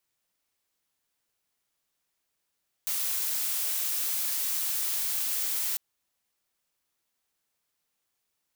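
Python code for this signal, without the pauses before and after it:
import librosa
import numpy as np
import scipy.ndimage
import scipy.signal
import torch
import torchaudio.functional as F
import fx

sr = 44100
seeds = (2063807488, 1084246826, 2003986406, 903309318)

y = fx.noise_colour(sr, seeds[0], length_s=2.9, colour='blue', level_db=-29.5)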